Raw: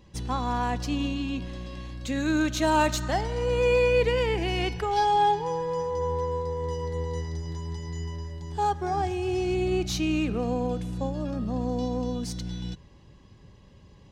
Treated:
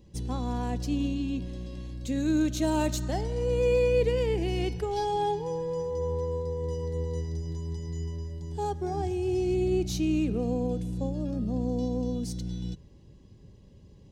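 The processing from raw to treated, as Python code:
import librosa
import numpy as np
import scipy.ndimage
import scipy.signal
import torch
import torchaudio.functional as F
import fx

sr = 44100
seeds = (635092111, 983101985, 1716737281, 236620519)

y = fx.curve_eq(x, sr, hz=(430.0, 1200.0, 9400.0), db=(0, -13, -1))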